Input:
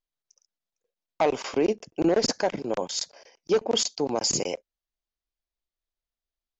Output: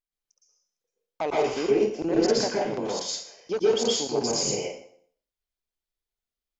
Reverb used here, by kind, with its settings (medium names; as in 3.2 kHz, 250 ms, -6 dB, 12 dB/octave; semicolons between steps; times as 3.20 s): plate-style reverb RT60 0.56 s, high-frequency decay 0.9×, pre-delay 105 ms, DRR -5.5 dB; trim -6.5 dB